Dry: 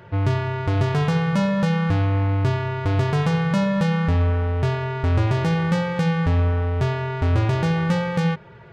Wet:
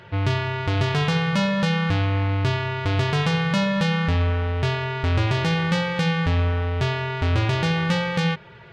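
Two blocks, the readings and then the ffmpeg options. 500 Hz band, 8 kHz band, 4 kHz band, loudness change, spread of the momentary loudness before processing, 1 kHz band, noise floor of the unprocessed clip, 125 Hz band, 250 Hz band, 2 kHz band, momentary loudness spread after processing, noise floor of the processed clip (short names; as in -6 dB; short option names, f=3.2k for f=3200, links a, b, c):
-1.5 dB, n/a, +7.0 dB, -1.0 dB, 3 LU, 0.0 dB, -44 dBFS, -2.0 dB, -2.0 dB, +3.5 dB, 3 LU, -45 dBFS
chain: -af "equalizer=f=3.4k:w=0.63:g=9.5,volume=-2dB"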